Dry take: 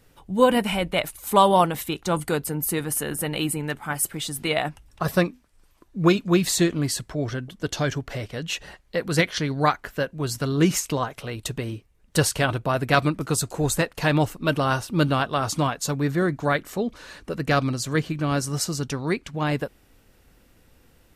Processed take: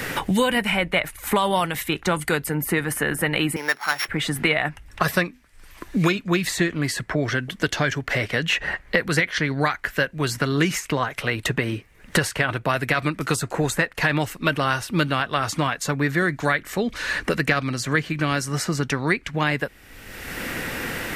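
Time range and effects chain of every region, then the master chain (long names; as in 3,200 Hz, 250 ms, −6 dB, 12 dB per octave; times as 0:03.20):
0:03.56–0:04.08: samples sorted by size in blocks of 8 samples + high-pass filter 550 Hz
whole clip: parametric band 1,900 Hz +11 dB 0.99 octaves; boost into a limiter +5.5 dB; multiband upward and downward compressor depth 100%; level −7 dB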